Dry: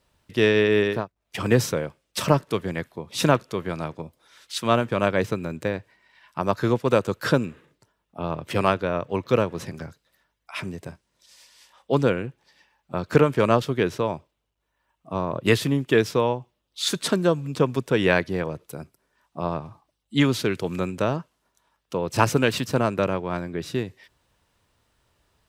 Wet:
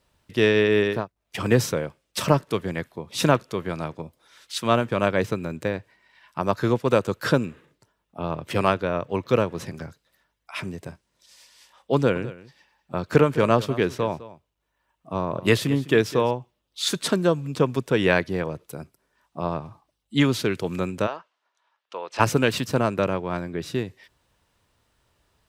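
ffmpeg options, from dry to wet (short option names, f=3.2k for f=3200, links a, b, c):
-filter_complex "[0:a]asettb=1/sr,asplit=3[a][b][c];[a]atrim=end=11.954[d];[b]atrim=start=11.95:end=16.31,asetpts=PTS-STARTPTS,afade=t=in:d=0.004:c=qsin,afade=t=out:st=4.356:d=0.004:c=qsin,aecho=1:1:206:0.141,atrim=end_sample=192276[e];[c]atrim=start=16.306[f];[d][e]acrossfade=d=0.004:c1=hsin:c2=qsin[g];[g][f]acrossfade=d=0.004:c1=qsin:c2=hsin,asplit=3[h][i][j];[h]afade=t=out:st=21.06:d=0.02[k];[i]highpass=740,lowpass=4k,afade=t=in:st=21.06:d=0.02,afade=t=out:st=22.19:d=0.02[l];[j]afade=t=in:st=22.19:d=0.02[m];[k][l][m]amix=inputs=3:normalize=0"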